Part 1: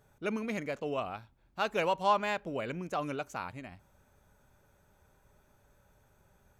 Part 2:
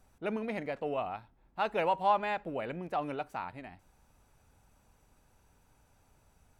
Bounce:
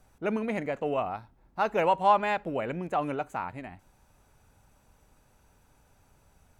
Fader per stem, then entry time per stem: −6.5, +3.0 decibels; 0.00, 0.00 seconds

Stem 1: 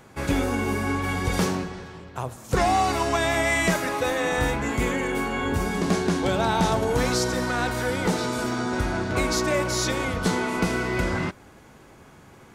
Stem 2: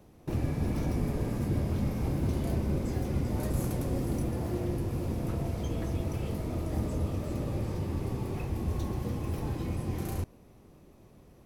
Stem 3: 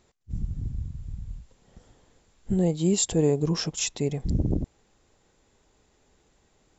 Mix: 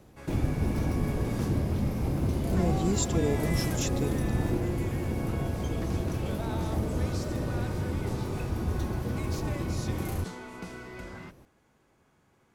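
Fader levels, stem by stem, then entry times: −17.0, +1.5, −6.5 decibels; 0.00, 0.00, 0.00 seconds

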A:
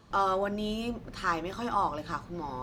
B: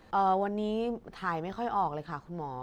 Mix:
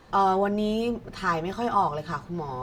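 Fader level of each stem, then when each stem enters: +1.0, +2.5 decibels; 0.00, 0.00 seconds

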